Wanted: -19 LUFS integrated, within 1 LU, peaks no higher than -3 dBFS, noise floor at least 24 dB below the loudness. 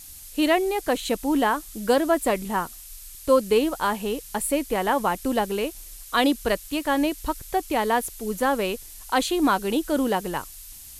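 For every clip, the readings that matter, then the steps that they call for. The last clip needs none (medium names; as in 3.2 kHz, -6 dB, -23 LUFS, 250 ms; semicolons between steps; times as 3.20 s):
noise floor -43 dBFS; noise floor target -49 dBFS; loudness -24.5 LUFS; peak level -7.5 dBFS; loudness target -19.0 LUFS
-> noise print and reduce 6 dB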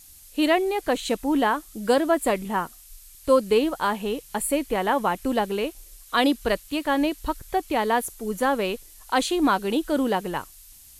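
noise floor -49 dBFS; loudness -24.5 LUFS; peak level -7.5 dBFS; loudness target -19.0 LUFS
-> trim +5.5 dB; peak limiter -3 dBFS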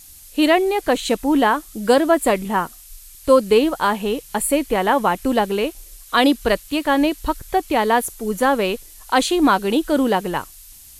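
loudness -19.0 LUFS; peak level -3.0 dBFS; noise floor -43 dBFS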